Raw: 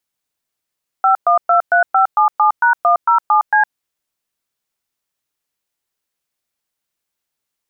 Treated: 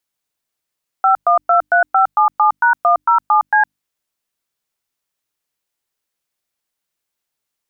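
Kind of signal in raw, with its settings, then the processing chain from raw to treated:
touch tones "5123577#107C", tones 111 ms, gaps 115 ms, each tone −11.5 dBFS
mains-hum notches 50/100/150/200/250/300 Hz

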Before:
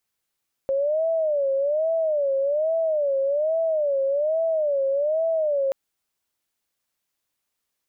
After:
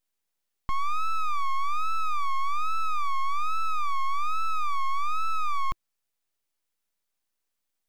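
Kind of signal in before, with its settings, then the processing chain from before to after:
siren wail 541–657 Hz 1.2 per second sine −19.5 dBFS 5.03 s
elliptic high-pass filter 170 Hz
full-wave rectification

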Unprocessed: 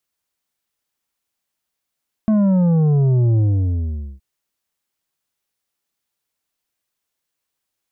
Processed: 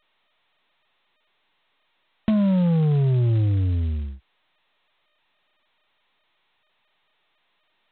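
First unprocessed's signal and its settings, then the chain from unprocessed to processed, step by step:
bass drop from 220 Hz, over 1.92 s, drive 7.5 dB, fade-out 0.82 s, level −13 dB
high-pass filter 45 Hz 24 dB per octave
downward compressor 2 to 1, threshold −20 dBFS
G.726 16 kbit/s 8,000 Hz

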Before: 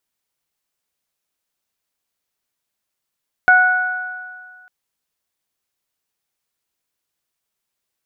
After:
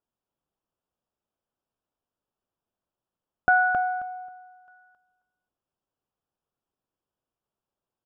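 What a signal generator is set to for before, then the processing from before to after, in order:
harmonic partials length 1.20 s, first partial 736 Hz, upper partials 6/−14 dB, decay 1.69 s, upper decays 1.91/1.09 s, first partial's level −13 dB
on a send: repeating echo 268 ms, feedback 17%, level −4.5 dB
on the sum: dynamic equaliser 440 Hz, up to −6 dB, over −39 dBFS, Q 1.5
moving average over 21 samples

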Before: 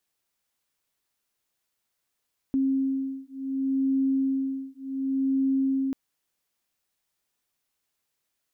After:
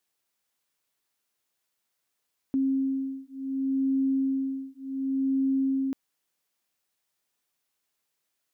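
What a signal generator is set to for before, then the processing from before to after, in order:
two tones that beat 268 Hz, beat 0.68 Hz, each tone −26.5 dBFS 3.39 s
low-shelf EQ 95 Hz −9.5 dB

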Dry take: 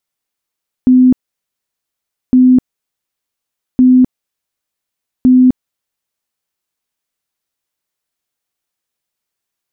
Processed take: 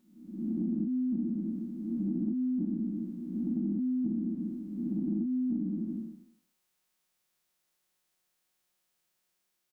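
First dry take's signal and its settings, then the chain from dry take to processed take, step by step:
tone bursts 254 Hz, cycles 65, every 1.46 s, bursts 4, −3.5 dBFS
spectrum smeared in time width 636 ms
comb filter 5.5 ms, depth 94%
downward compressor 8 to 1, threshold −29 dBFS

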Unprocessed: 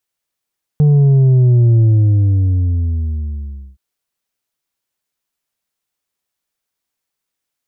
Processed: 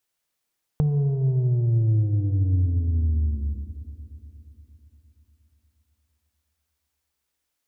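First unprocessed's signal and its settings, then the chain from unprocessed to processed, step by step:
bass drop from 150 Hz, over 2.97 s, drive 4.5 dB, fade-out 1.98 s, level −7.5 dB
downward compressor 6 to 1, threshold −22 dBFS
feedback delay network reverb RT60 3.9 s, high-frequency decay 0.7×, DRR 10.5 dB

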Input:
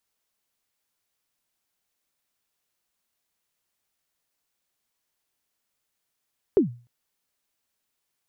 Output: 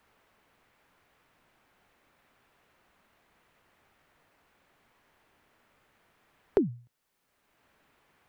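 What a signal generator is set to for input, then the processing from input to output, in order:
synth kick length 0.30 s, from 440 Hz, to 120 Hz, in 121 ms, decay 0.36 s, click off, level −11 dB
multiband upward and downward compressor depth 70%

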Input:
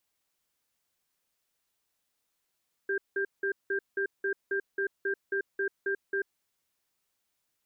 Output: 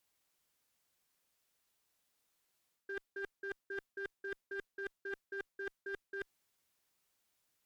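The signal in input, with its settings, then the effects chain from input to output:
tone pair in a cadence 393 Hz, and 1,590 Hz, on 0.09 s, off 0.18 s, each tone −29.5 dBFS 3.41 s
reversed playback
downward compressor 12 to 1, threshold −39 dBFS
reversed playback
asymmetric clip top −37.5 dBFS

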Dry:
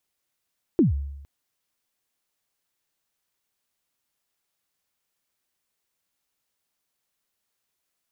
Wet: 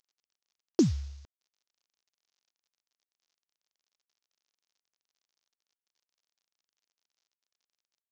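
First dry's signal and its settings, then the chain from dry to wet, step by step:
synth kick length 0.46 s, from 380 Hz, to 70 Hz, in 138 ms, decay 0.92 s, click off, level −12.5 dB
variable-slope delta modulation 32 kbit/s
bass and treble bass −6 dB, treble +13 dB

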